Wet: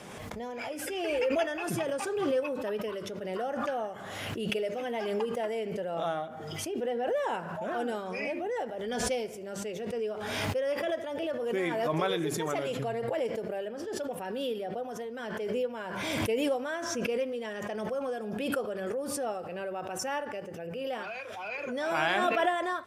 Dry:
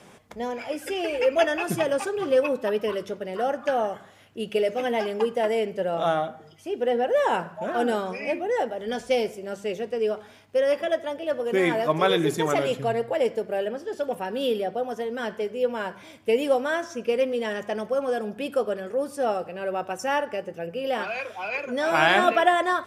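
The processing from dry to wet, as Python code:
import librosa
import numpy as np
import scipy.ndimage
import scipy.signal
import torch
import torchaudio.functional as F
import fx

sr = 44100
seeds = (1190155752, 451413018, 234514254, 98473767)

y = fx.pre_swell(x, sr, db_per_s=25.0)
y = F.gain(torch.from_numpy(y), -9.0).numpy()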